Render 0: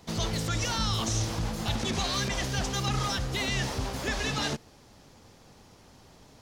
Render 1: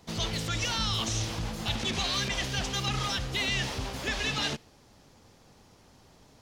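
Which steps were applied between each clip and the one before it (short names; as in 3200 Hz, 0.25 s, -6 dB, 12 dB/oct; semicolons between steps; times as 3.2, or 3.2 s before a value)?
dynamic EQ 2900 Hz, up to +7 dB, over -46 dBFS, Q 1.1; gain -3 dB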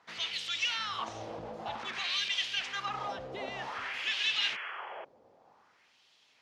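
painted sound noise, 3.74–5.05, 330–3400 Hz -39 dBFS; wah 0.53 Hz 560–3200 Hz, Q 2.2; gain +4 dB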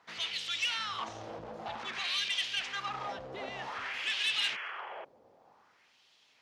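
core saturation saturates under 3200 Hz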